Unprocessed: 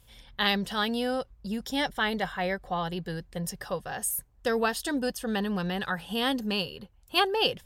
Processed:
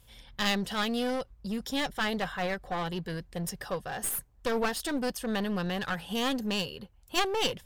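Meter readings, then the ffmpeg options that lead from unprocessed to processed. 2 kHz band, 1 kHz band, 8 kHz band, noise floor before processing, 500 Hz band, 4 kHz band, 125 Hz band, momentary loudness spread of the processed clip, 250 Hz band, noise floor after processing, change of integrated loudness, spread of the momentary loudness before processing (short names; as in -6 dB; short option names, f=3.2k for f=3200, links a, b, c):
-2.5 dB, -2.5 dB, -0.5 dB, -59 dBFS, -2.0 dB, -3.0 dB, -1.0 dB, 7 LU, -1.0 dB, -59 dBFS, -2.0 dB, 9 LU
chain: -af "aeval=exprs='clip(val(0),-1,0.0237)':c=same"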